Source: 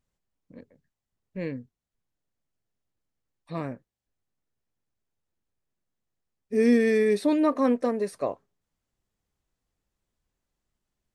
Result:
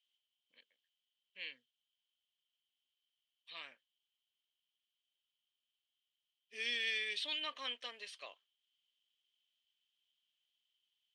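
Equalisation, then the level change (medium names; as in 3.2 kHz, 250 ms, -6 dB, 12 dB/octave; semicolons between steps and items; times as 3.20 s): band-pass filter 3.1 kHz, Q 16; distance through air 60 m; tilt EQ +4 dB/octave; +14.5 dB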